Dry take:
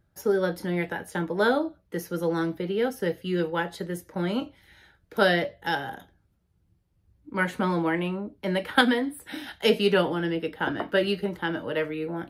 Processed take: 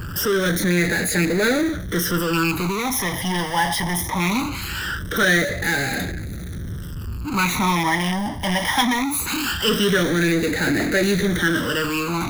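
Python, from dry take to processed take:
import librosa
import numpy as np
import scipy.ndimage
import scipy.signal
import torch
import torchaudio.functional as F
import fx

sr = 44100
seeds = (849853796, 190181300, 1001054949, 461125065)

p1 = fx.rattle_buzz(x, sr, strikes_db=-30.0, level_db=-22.0)
p2 = fx.power_curve(p1, sr, exponent=0.35)
p3 = fx.low_shelf(p2, sr, hz=140.0, db=-5.0)
p4 = (np.mod(10.0 ** (17.0 / 20.0) * p3 + 1.0, 2.0) - 1.0) / 10.0 ** (17.0 / 20.0)
p5 = p3 + (p4 * 10.0 ** (-11.0 / 20.0))
p6 = fx.phaser_stages(p5, sr, stages=12, low_hz=430.0, high_hz=1000.0, hz=0.21, feedback_pct=35)
y = p6 * 10.0 ** (-2.5 / 20.0)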